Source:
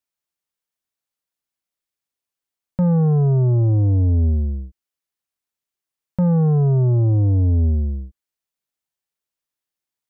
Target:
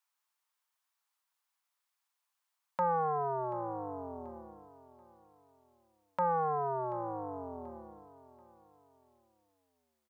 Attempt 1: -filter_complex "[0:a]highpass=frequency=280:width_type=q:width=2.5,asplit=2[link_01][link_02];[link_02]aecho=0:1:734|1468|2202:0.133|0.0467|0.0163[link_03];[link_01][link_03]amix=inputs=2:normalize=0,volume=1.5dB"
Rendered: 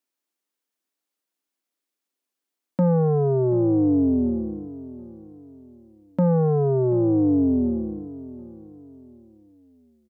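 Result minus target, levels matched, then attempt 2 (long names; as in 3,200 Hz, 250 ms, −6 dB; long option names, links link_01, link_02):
1,000 Hz band −17.0 dB
-filter_complex "[0:a]highpass=frequency=970:width_type=q:width=2.5,asplit=2[link_01][link_02];[link_02]aecho=0:1:734|1468|2202:0.133|0.0467|0.0163[link_03];[link_01][link_03]amix=inputs=2:normalize=0,volume=1.5dB"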